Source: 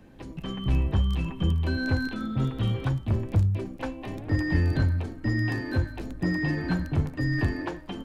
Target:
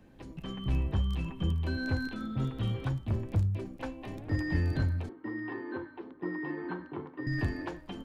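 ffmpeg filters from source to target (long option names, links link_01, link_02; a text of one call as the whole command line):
ffmpeg -i in.wav -filter_complex "[0:a]asettb=1/sr,asplit=3[link_01][link_02][link_03];[link_01]atrim=end=5.094[link_04];[link_02]atrim=start=5.09:end=7.27,asetpts=PTS-STARTPTS,afade=type=in:duration=0.004:curve=qsin,afade=type=out:start_time=2.176:duration=0.004:curve=qsin,highpass=340,equalizer=frequency=370:width_type=q:width=4:gain=9,equalizer=frequency=630:width_type=q:width=4:gain=-9,equalizer=frequency=1000:width_type=q:width=4:gain=7,equalizer=frequency=1700:width_type=q:width=4:gain=-4,equalizer=frequency=2500:width_type=q:width=4:gain=-9,lowpass=frequency=2900:width=0.5412,lowpass=frequency=2900:width=1.3066[link_05];[link_03]atrim=start=7.266[link_06];[link_04][link_05]acrossfade=duration=0.004:curve1=hsin:curve2=qsin[link_07];[link_07][link_06]acrossfade=duration=0.004:curve1=qsin:curve2=hsin,volume=-5.5dB" out.wav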